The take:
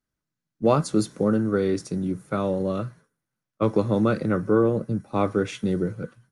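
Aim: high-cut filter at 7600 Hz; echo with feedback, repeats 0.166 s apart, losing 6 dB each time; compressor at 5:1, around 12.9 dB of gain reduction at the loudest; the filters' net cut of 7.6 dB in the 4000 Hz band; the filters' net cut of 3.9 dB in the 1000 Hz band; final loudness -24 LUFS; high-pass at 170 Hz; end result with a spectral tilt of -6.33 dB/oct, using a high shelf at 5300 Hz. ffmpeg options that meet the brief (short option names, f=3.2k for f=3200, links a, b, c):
-af "highpass=170,lowpass=7.6k,equalizer=f=1k:t=o:g=-4.5,equalizer=f=4k:t=o:g=-6.5,highshelf=f=5.3k:g=-5.5,acompressor=threshold=-31dB:ratio=5,aecho=1:1:166|332|498|664|830|996:0.501|0.251|0.125|0.0626|0.0313|0.0157,volume=11dB"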